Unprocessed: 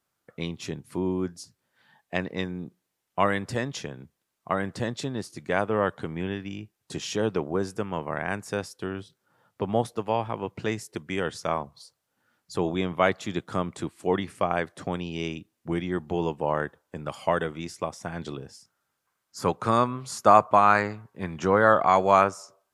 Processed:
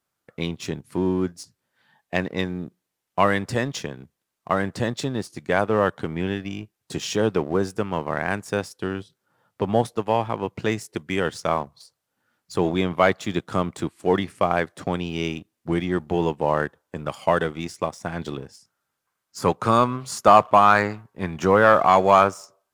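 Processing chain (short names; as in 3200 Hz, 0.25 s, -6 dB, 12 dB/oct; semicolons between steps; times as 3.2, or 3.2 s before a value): sample leveller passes 1; gain +1 dB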